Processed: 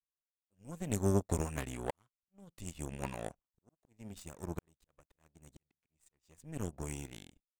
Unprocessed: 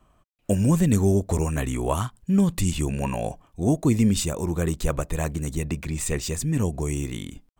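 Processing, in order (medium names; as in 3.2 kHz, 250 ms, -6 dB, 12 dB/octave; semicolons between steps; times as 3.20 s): slow attack 720 ms; power-law waveshaper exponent 2; trim -3.5 dB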